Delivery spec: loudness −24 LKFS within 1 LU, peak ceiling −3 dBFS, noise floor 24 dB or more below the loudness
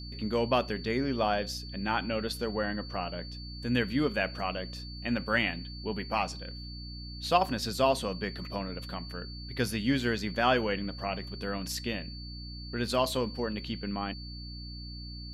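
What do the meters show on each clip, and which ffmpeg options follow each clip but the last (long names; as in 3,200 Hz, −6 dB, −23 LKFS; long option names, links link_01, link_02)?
mains hum 60 Hz; hum harmonics up to 300 Hz; level of the hum −40 dBFS; interfering tone 4,500 Hz; level of the tone −45 dBFS; integrated loudness −32.0 LKFS; sample peak −10.0 dBFS; target loudness −24.0 LKFS
→ -af "bandreject=frequency=60:width_type=h:width=4,bandreject=frequency=120:width_type=h:width=4,bandreject=frequency=180:width_type=h:width=4,bandreject=frequency=240:width_type=h:width=4,bandreject=frequency=300:width_type=h:width=4"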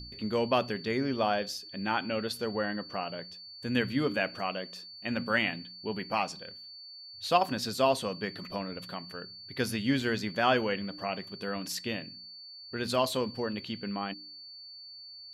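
mains hum none found; interfering tone 4,500 Hz; level of the tone −45 dBFS
→ -af "bandreject=frequency=4500:width=30"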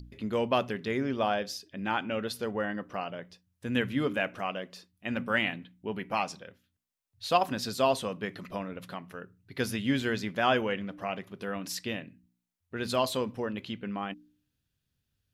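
interfering tone none found; integrated loudness −32.0 LKFS; sample peak −10.0 dBFS; target loudness −24.0 LKFS
→ -af "volume=8dB,alimiter=limit=-3dB:level=0:latency=1"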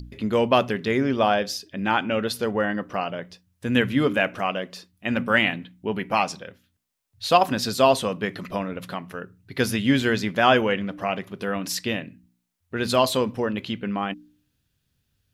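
integrated loudness −24.0 LKFS; sample peak −3.0 dBFS; background noise floor −73 dBFS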